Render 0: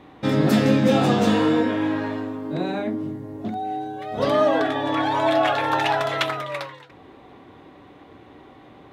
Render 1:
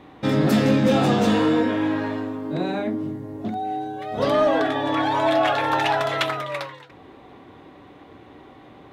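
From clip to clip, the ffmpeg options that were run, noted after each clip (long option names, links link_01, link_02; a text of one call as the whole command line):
ffmpeg -i in.wav -af "acontrast=89,volume=-6.5dB" out.wav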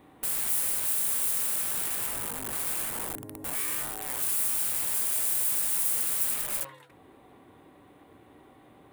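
ffmpeg -i in.wav -af "aeval=exprs='(mod(20*val(0)+1,2)-1)/20':channel_layout=same,aexciter=amount=2.8:drive=3.1:freq=8900,highshelf=frequency=6700:width_type=q:width=1.5:gain=7.5,volume=-9dB" out.wav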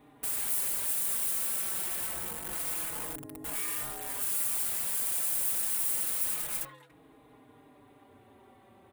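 ffmpeg -i in.wav -filter_complex "[0:a]asplit=2[link_01][link_02];[link_02]adelay=4.4,afreqshift=-0.27[link_03];[link_01][link_03]amix=inputs=2:normalize=1" out.wav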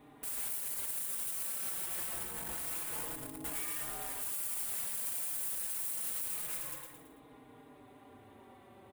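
ffmpeg -i in.wav -af "aecho=1:1:111|222|333|444|555:0.501|0.205|0.0842|0.0345|0.0142,alimiter=level_in=3dB:limit=-24dB:level=0:latency=1:release=145,volume=-3dB" out.wav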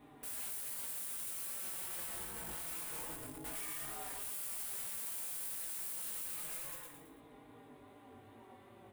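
ffmpeg -i in.wav -af "flanger=delay=17:depth=4.5:speed=2.5,asoftclip=type=tanh:threshold=-39dB,volume=2dB" out.wav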